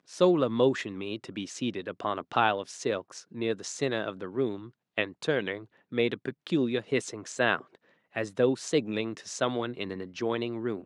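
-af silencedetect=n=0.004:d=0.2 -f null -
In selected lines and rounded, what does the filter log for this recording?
silence_start: 4.70
silence_end: 4.97 | silence_duration: 0.28
silence_start: 5.65
silence_end: 5.92 | silence_duration: 0.27
silence_start: 7.75
silence_end: 8.15 | silence_duration: 0.40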